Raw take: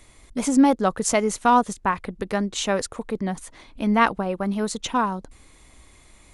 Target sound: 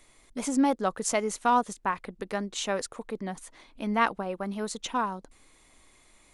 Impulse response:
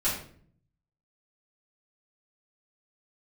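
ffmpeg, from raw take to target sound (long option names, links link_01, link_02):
-af "equalizer=frequency=63:width_type=o:width=2.6:gain=-10.5,volume=-5.5dB"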